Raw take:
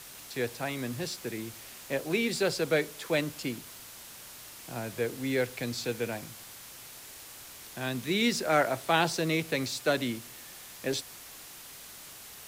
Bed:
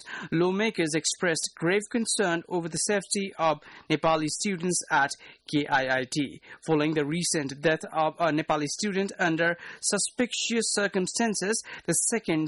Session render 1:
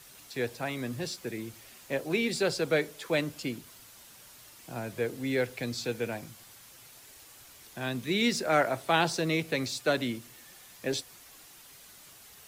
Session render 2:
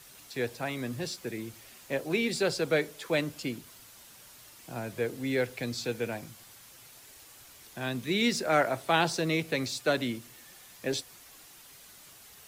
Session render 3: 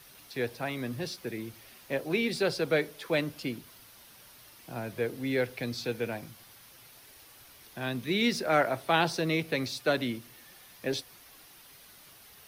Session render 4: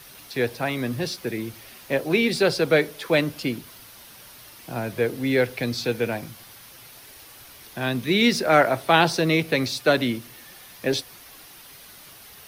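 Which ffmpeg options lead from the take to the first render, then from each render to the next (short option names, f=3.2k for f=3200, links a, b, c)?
-af "afftdn=nr=7:nf=-48"
-af anull
-af "equalizer=f=7.4k:t=o:w=0.37:g=-11"
-af "volume=8dB"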